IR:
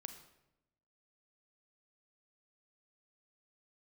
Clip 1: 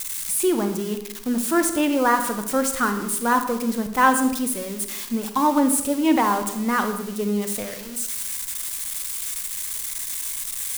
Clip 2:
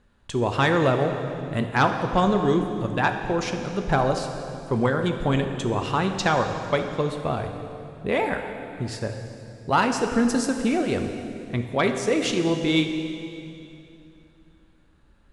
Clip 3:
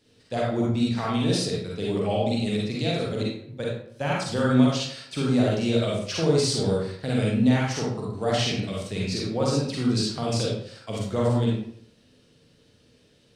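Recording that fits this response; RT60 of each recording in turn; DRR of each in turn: 1; 0.90, 2.7, 0.65 seconds; 7.5, 5.0, −4.5 decibels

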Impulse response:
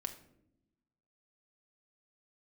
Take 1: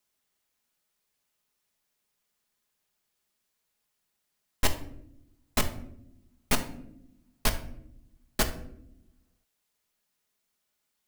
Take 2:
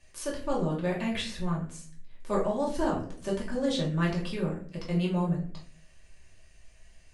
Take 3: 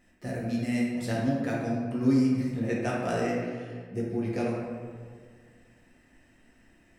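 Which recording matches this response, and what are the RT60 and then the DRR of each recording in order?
1; 0.80, 0.50, 1.8 seconds; 4.5, −5.0, −5.5 decibels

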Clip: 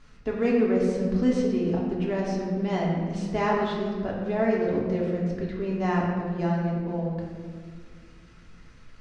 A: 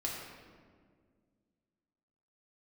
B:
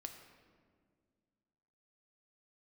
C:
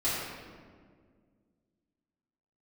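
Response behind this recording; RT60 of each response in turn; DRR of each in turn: A; 1.9, 1.9, 1.9 seconds; −4.0, 4.5, −13.0 decibels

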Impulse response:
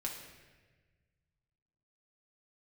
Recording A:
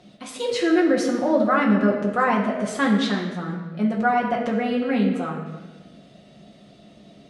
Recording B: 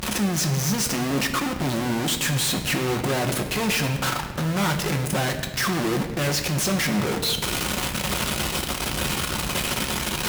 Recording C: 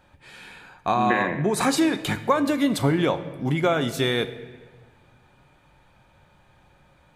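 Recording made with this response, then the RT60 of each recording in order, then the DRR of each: A; 1.3, 1.4, 1.4 seconds; −2.5, 3.5, 8.5 decibels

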